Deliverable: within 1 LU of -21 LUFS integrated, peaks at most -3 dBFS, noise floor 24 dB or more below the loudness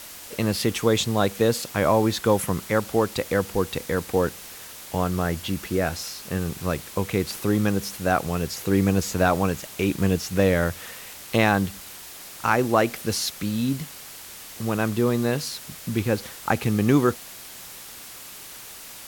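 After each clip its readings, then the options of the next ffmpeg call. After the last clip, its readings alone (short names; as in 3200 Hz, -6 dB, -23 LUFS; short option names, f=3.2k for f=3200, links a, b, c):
noise floor -41 dBFS; noise floor target -48 dBFS; loudness -24.0 LUFS; peak -5.0 dBFS; loudness target -21.0 LUFS
-> -af "afftdn=nr=7:nf=-41"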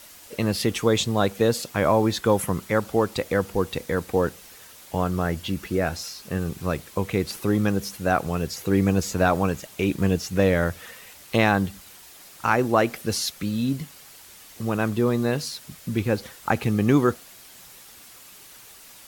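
noise floor -47 dBFS; noise floor target -49 dBFS
-> -af "afftdn=nr=6:nf=-47"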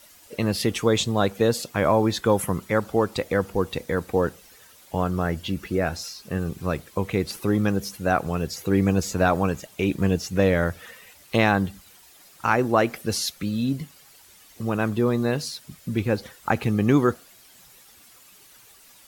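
noise floor -52 dBFS; loudness -24.5 LUFS; peak -5.0 dBFS; loudness target -21.0 LUFS
-> -af "volume=3.5dB,alimiter=limit=-3dB:level=0:latency=1"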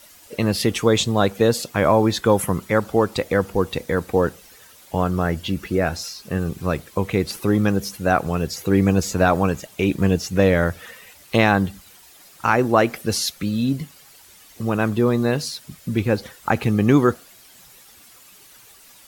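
loudness -21.0 LUFS; peak -3.0 dBFS; noise floor -49 dBFS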